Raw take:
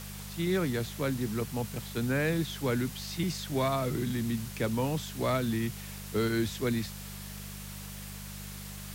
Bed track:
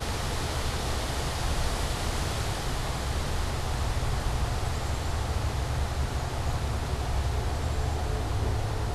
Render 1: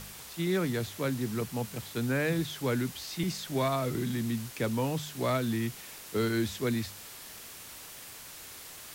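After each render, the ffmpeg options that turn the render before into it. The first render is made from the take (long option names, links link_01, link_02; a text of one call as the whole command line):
ffmpeg -i in.wav -af "bandreject=frequency=50:width_type=h:width=4,bandreject=frequency=100:width_type=h:width=4,bandreject=frequency=150:width_type=h:width=4,bandreject=frequency=200:width_type=h:width=4" out.wav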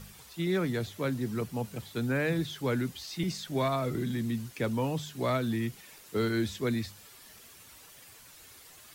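ffmpeg -i in.wav -af "afftdn=noise_reduction=9:noise_floor=-47" out.wav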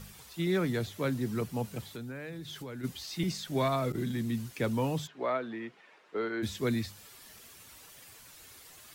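ffmpeg -i in.wav -filter_complex "[0:a]asplit=3[link_01][link_02][link_03];[link_01]afade=type=out:start_time=1.92:duration=0.02[link_04];[link_02]acompressor=threshold=-38dB:ratio=8:attack=3.2:release=140:knee=1:detection=peak,afade=type=in:start_time=1.92:duration=0.02,afade=type=out:start_time=2.83:duration=0.02[link_05];[link_03]afade=type=in:start_time=2.83:duration=0.02[link_06];[link_04][link_05][link_06]amix=inputs=3:normalize=0,asettb=1/sr,asplit=3[link_07][link_08][link_09];[link_07]atrim=end=3.924[link_10];[link_08]atrim=start=3.92:end=4.37,asetpts=PTS-STARTPTS,afade=type=in:duration=0.004:curve=qsin,afade=type=out:start_time=0.446:duration=0.004:curve=qsin,agate=range=-33dB:threshold=-31dB:ratio=3:release=100:detection=peak[link_11];[link_09]atrim=start=4.366[link_12];[link_10][link_11]acrossfade=duration=0.004:curve1=hsin:curve2=qsin[link_13];[link_13][link_12]acrossfade=duration=0.004:curve1=qsin:curve2=hsin,asplit=3[link_14][link_15][link_16];[link_14]afade=type=out:start_time=5.06:duration=0.02[link_17];[link_15]highpass=400,lowpass=2000,afade=type=in:start_time=5.06:duration=0.02,afade=type=out:start_time=6.42:duration=0.02[link_18];[link_16]afade=type=in:start_time=6.42:duration=0.02[link_19];[link_17][link_18][link_19]amix=inputs=3:normalize=0" out.wav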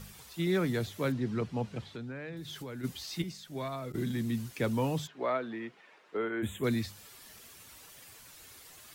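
ffmpeg -i in.wav -filter_complex "[0:a]asettb=1/sr,asplit=3[link_01][link_02][link_03];[link_01]atrim=end=1.124[link_04];[link_02]atrim=start=1.12:end=2.37,asetpts=PTS-STARTPTS,afade=type=in:duration=0.004:curve=qsin,afade=type=out:start_time=1.246:duration=0.004:curve=qsin,lowpass=4400[link_05];[link_03]atrim=start=2.366[link_06];[link_04][link_05]acrossfade=duration=0.004:curve1=hsin:curve2=qsin[link_07];[link_07][link_06]acrossfade=duration=0.004:curve1=qsin:curve2=hsin,asettb=1/sr,asplit=3[link_08][link_09][link_10];[link_08]atrim=end=6.174[link_11];[link_09]atrim=start=6.17:end=6.64,asetpts=PTS-STARTPTS,afade=type=in:duration=0.004:curve=qsin,afade=type=out:start_time=0.466:duration=0.004:curve=qsin,asuperstop=centerf=5000:order=8:qfactor=1.4[link_12];[link_10]atrim=start=6.636[link_13];[link_11][link_12]acrossfade=duration=0.004:curve1=hsin:curve2=qsin[link_14];[link_14][link_13]acrossfade=duration=0.004:curve1=qsin:curve2=hsin,asplit=3[link_15][link_16][link_17];[link_15]atrim=end=3.222[link_18];[link_16]atrim=start=3.218:end=3.942,asetpts=PTS-STARTPTS,volume=-8.5dB[link_19];[link_17]atrim=start=3.938[link_20];[link_18][link_19]acrossfade=duration=0.004:curve1=hsin:curve2=hsin[link_21];[link_21][link_20]acrossfade=duration=0.004:curve1=hsin:curve2=hsin" out.wav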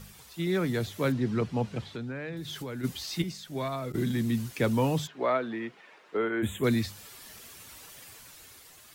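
ffmpeg -i in.wav -af "dynaudnorm=framelen=180:gausssize=9:maxgain=4.5dB" out.wav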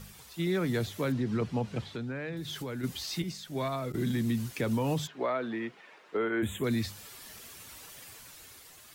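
ffmpeg -i in.wav -af "alimiter=limit=-21.5dB:level=0:latency=1:release=83" out.wav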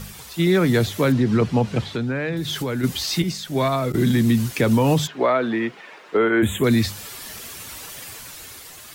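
ffmpeg -i in.wav -af "volume=12dB" out.wav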